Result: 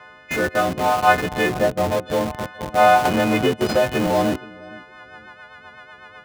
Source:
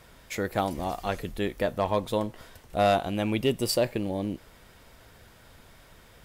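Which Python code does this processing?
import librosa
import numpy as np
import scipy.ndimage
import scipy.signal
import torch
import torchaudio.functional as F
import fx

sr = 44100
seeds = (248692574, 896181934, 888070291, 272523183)

p1 = fx.freq_snap(x, sr, grid_st=3)
p2 = scipy.signal.sosfilt(scipy.signal.butter(2, 2300.0, 'lowpass', fs=sr, output='sos'), p1)
p3 = fx.peak_eq(p2, sr, hz=1200.0, db=13.0, octaves=2.7)
p4 = fx.rider(p3, sr, range_db=4, speed_s=0.5)
p5 = p4 + fx.echo_feedback(p4, sr, ms=469, feedback_pct=24, wet_db=-15.0, dry=0)
p6 = fx.rotary_switch(p5, sr, hz=0.65, then_hz=8.0, switch_at_s=4.35)
p7 = fx.tilt_shelf(p6, sr, db=9.5, hz=670.0, at=(1.49, 1.91))
p8 = fx.schmitt(p7, sr, flips_db=-27.0)
p9 = p7 + (p8 * 10.0 ** (-3.0 / 20.0))
p10 = scipy.signal.sosfilt(scipy.signal.butter(2, 87.0, 'highpass', fs=sr, output='sos'), p9)
y = fx.band_squash(p10, sr, depth_pct=100, at=(3.05, 4.07))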